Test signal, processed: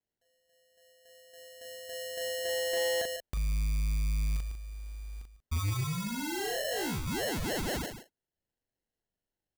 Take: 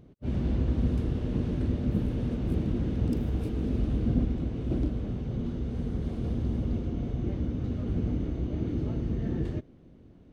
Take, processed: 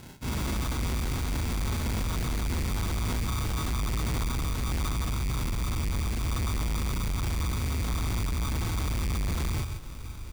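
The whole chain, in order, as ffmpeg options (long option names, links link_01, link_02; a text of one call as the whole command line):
ffmpeg -i in.wav -filter_complex "[0:a]asplit=2[link_01][link_02];[link_02]acompressor=threshold=-40dB:ratio=10,volume=-2dB[link_03];[link_01][link_03]amix=inputs=2:normalize=0,aecho=1:1:149:0.251,aresample=11025,acrusher=bits=6:mode=log:mix=0:aa=0.000001,aresample=44100,asubboost=boost=6:cutoff=84,acrusher=samples=37:mix=1:aa=0.000001,highshelf=frequency=2200:gain=10,asplit=2[link_04][link_05];[link_05]adelay=39,volume=-3dB[link_06];[link_04][link_06]amix=inputs=2:normalize=0,asoftclip=type=tanh:threshold=-26.5dB" out.wav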